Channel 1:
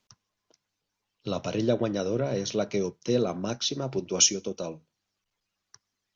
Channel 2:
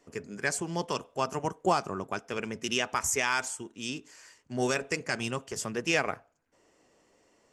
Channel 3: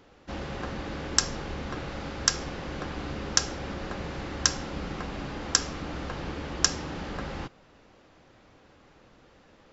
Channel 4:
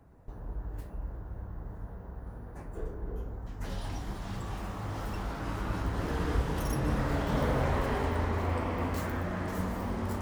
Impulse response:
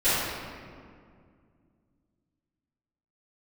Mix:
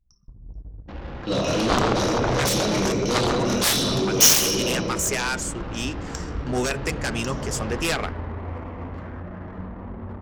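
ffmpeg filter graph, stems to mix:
-filter_complex "[0:a]adynamicequalizer=threshold=0.00794:dfrequency=2400:dqfactor=0.7:tfrequency=2400:tqfactor=0.7:attack=5:release=100:ratio=0.375:range=3:mode=boostabove:tftype=highshelf,volume=0.355,asplit=2[s0][s1];[s1]volume=0.631[s2];[1:a]adelay=1950,volume=0.841[s3];[2:a]acompressor=threshold=0.0158:ratio=6,adelay=600,volume=0.376,asplit=2[s4][s5];[s5]volume=0.158[s6];[3:a]bass=f=250:g=3,treble=f=4000:g=-8,volume=0.266[s7];[4:a]atrim=start_sample=2205[s8];[s2][s6]amix=inputs=2:normalize=0[s9];[s9][s8]afir=irnorm=-1:irlink=0[s10];[s0][s3][s4][s7][s10]amix=inputs=5:normalize=0,anlmdn=0.01,adynamicequalizer=threshold=0.0158:dfrequency=610:dqfactor=0.88:tfrequency=610:tqfactor=0.88:attack=5:release=100:ratio=0.375:range=2.5:mode=cutabove:tftype=bell,aeval=exprs='0.398*(cos(1*acos(clip(val(0)/0.398,-1,1)))-cos(1*PI/2))+0.2*(cos(7*acos(clip(val(0)/0.398,-1,1)))-cos(7*PI/2))':c=same"

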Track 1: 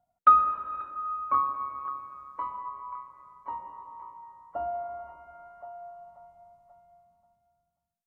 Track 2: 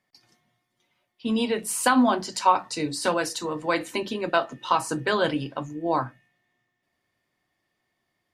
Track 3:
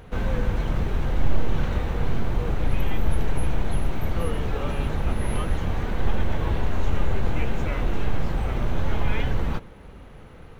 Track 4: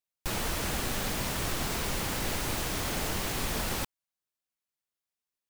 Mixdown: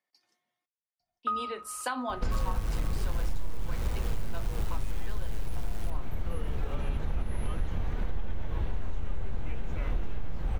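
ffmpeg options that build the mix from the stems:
-filter_complex "[0:a]adelay=1000,volume=0.282[s0];[1:a]highpass=360,volume=0.282,asplit=3[s1][s2][s3];[s1]atrim=end=0.66,asetpts=PTS-STARTPTS,afade=t=out:st=0.656:d=0.004:c=hsin[s4];[s2]atrim=start=0.66:end=1.23,asetpts=PTS-STARTPTS,volume=0[s5];[s3]atrim=start=1.23,asetpts=PTS-STARTPTS,afade=t=in:d=0.004:c=hsin[s6];[s4][s5][s6]concat=n=3:v=0:a=1,asplit=2[s7][s8];[s8]volume=0.1[s9];[2:a]adelay=2100,volume=0.794[s10];[3:a]volume=39.8,asoftclip=hard,volume=0.0251,tremolo=f=110:d=0.857,adelay=2050,volume=1.06,asplit=2[s11][s12];[s12]volume=0.15[s13];[s9][s13]amix=inputs=2:normalize=0,aecho=0:1:850:1[s14];[s0][s7][s10][s11][s14]amix=inputs=5:normalize=0,lowshelf=f=73:g=8.5,acompressor=threshold=0.0501:ratio=4"

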